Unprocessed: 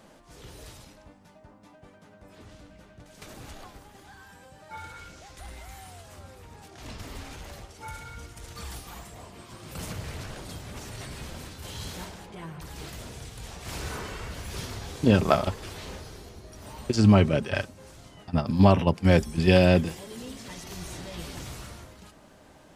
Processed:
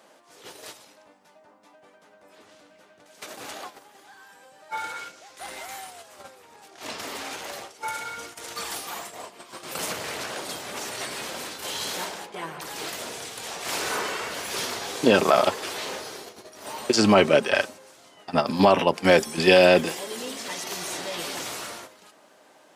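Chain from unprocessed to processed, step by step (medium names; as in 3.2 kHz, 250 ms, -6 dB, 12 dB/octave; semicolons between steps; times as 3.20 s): gate -44 dBFS, range -9 dB; high-pass 400 Hz 12 dB/octave; loudness maximiser +14.5 dB; trim -4.5 dB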